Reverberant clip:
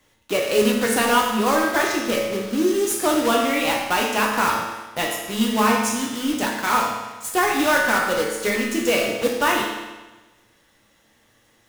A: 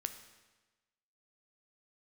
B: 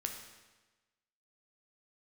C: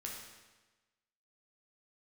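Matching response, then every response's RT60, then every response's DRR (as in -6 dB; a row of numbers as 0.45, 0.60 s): C; 1.2, 1.2, 1.2 s; 8.0, 3.0, -2.0 dB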